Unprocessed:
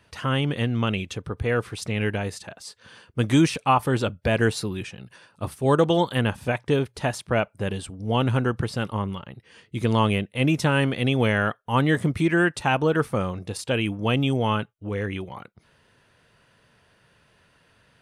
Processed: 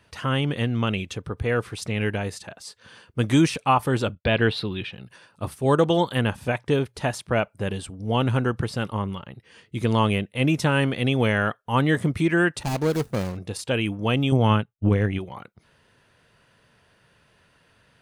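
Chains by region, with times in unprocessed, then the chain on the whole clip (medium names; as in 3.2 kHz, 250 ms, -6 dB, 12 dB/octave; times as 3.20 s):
4.15–4.93 s: expander -44 dBFS + resonant high shelf 5 kHz -11.5 dB, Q 3
12.63–13.37 s: median filter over 41 samples + tone controls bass 0 dB, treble +11 dB + tape noise reduction on one side only decoder only
14.32–15.19 s: tone controls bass +8 dB, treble -1 dB + transient shaper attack +11 dB, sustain -11 dB
whole clip: none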